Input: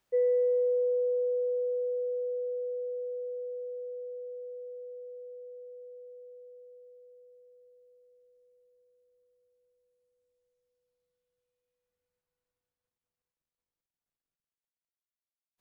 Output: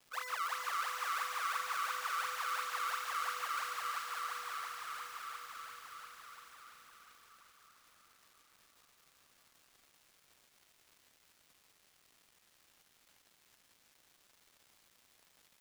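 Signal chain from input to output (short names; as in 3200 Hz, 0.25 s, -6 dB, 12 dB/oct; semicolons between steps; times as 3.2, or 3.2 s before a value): spectral limiter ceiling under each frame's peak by 27 dB; Doppler pass-by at 3.53, 6 m/s, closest 6.9 m; in parallel at -1 dB: compressor 10:1, threshold -46 dBFS, peak gain reduction 12.5 dB; on the sum: decimation with a swept rate 30×, swing 160% 2.9 Hz; ladder high-pass 1100 Hz, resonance 75%; crackle 490/s -61 dBFS; on a send: thin delay 0.388 s, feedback 60%, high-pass 1400 Hz, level -4 dB; on the sum: lo-fi delay 0.143 s, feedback 80%, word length 11-bit, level -7 dB; gain +7 dB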